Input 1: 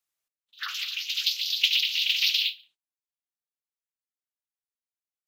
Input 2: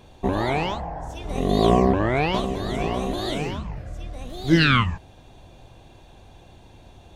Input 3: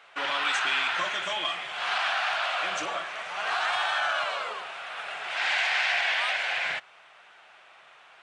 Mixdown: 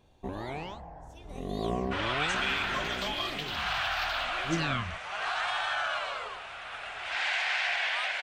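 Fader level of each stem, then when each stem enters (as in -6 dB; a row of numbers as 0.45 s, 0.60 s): -17.0 dB, -14.0 dB, -4.0 dB; 1.75 s, 0.00 s, 1.75 s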